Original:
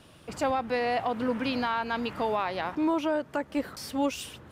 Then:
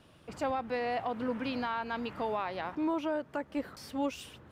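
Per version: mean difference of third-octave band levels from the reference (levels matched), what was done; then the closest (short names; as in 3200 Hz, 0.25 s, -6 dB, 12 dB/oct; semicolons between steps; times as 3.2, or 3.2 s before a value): 1.5 dB: bell 11000 Hz -5.5 dB 2.2 oct; gain -5 dB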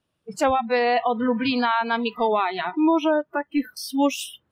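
11.5 dB: spectral noise reduction 30 dB; gain +7.5 dB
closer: first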